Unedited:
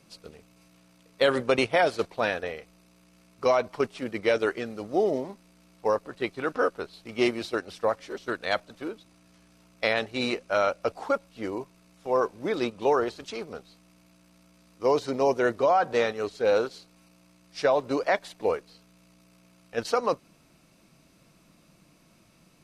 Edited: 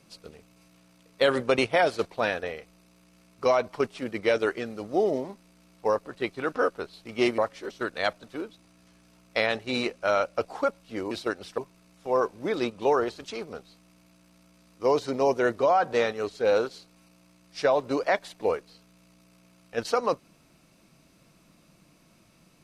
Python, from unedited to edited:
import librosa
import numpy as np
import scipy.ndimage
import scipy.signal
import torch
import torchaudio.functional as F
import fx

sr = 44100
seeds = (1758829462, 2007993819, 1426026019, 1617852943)

y = fx.edit(x, sr, fx.move(start_s=7.38, length_s=0.47, to_s=11.58), tone=tone)